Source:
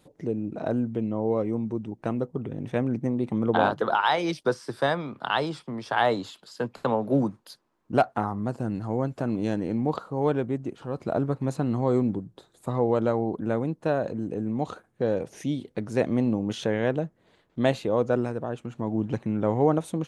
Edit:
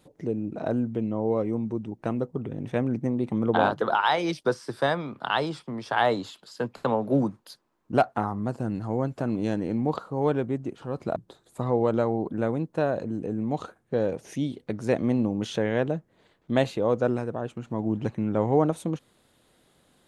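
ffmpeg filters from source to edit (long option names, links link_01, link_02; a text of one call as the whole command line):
ffmpeg -i in.wav -filter_complex "[0:a]asplit=2[link_01][link_02];[link_01]atrim=end=11.162[link_03];[link_02]atrim=start=12.238[link_04];[link_03][link_04]acrossfade=duration=0.004:curve1=hsin:curve2=hsin" out.wav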